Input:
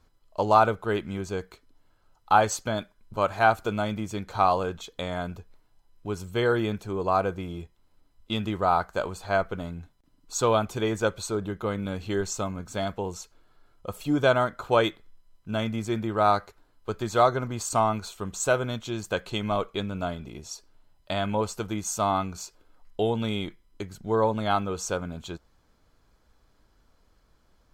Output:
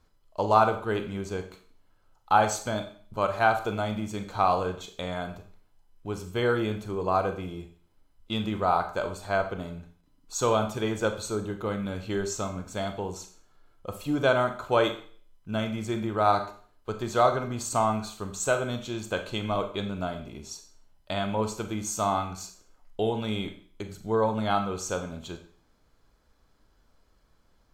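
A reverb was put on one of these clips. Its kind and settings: Schroeder reverb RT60 0.47 s, combs from 29 ms, DRR 7 dB; trim -2 dB

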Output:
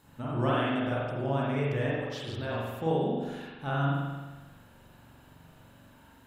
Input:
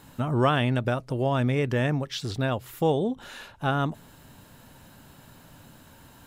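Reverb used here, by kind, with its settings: spring tank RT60 1.3 s, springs 43 ms, chirp 75 ms, DRR -6 dB; trim -11 dB

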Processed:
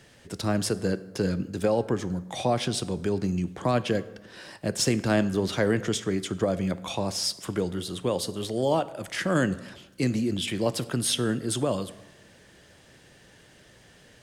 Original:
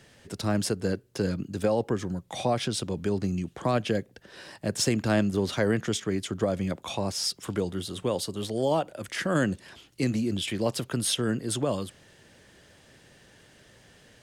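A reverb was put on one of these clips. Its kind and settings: plate-style reverb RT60 1.1 s, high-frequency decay 0.65×, DRR 14 dB; trim +1 dB

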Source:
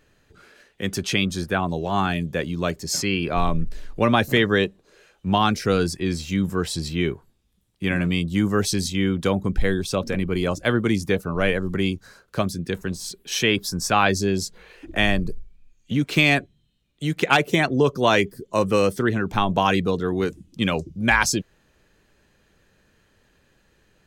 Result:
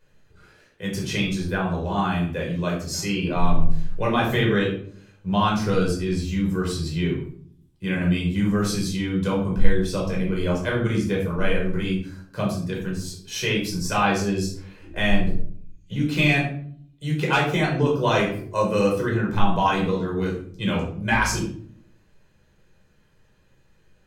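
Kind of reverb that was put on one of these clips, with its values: simulated room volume 680 m³, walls furnished, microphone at 5 m; trim -9.5 dB

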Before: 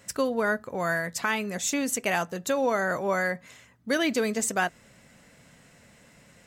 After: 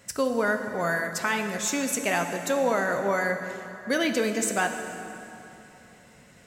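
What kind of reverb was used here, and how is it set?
plate-style reverb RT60 3.1 s, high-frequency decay 0.75×, DRR 5.5 dB

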